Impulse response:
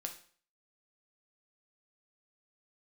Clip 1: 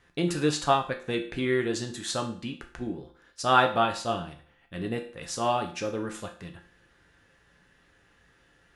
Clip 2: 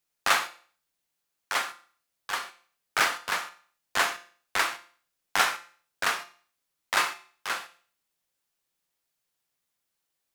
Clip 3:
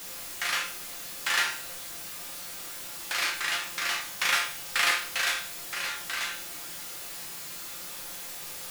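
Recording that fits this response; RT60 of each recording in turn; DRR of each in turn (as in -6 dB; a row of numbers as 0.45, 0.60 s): 1; 0.50, 0.50, 0.50 s; 3.0, 8.5, -1.5 dB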